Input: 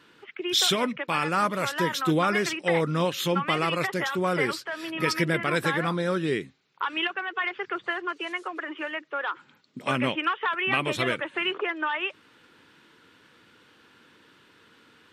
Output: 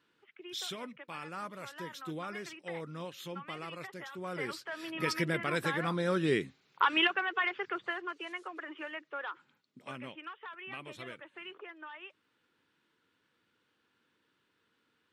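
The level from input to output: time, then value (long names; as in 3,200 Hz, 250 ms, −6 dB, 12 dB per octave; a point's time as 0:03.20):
0:04.11 −17 dB
0:04.72 −7 dB
0:05.77 −7 dB
0:06.82 +2.5 dB
0:08.17 −9 dB
0:09.20 −9 dB
0:10.04 −19 dB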